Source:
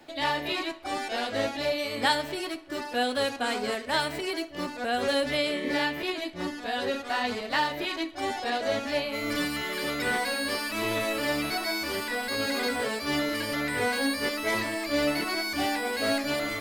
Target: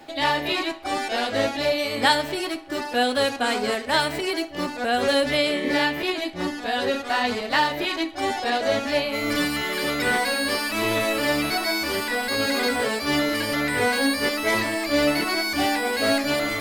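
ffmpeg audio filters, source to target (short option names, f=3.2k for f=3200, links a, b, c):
-af "areverse,acompressor=mode=upward:threshold=-35dB:ratio=2.5,areverse,aeval=exprs='val(0)+0.00178*sin(2*PI*800*n/s)':c=same,volume=5.5dB"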